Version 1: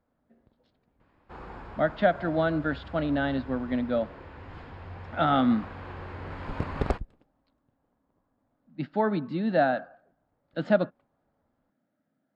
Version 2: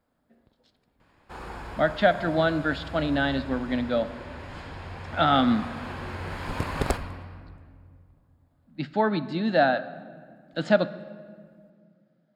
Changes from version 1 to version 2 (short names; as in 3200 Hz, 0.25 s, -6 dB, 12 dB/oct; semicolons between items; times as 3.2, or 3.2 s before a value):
speech: send on; first sound: send +11.5 dB; master: remove tape spacing loss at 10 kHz 23 dB